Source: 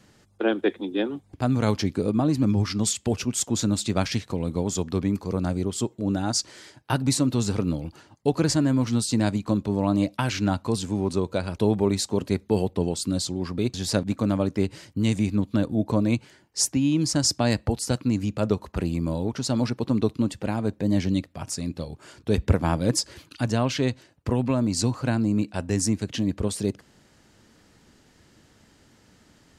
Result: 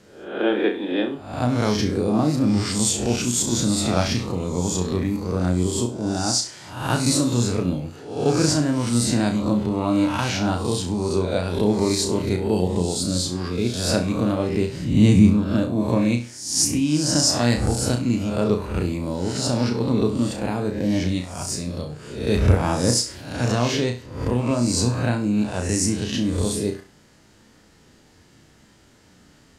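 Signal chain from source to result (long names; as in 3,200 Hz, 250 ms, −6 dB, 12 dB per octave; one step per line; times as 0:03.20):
peak hold with a rise ahead of every peak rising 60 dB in 0.66 s
0:14.69–0:15.30: low-shelf EQ 450 Hz +10.5 dB
on a send: flutter between parallel walls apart 5.7 metres, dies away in 0.33 s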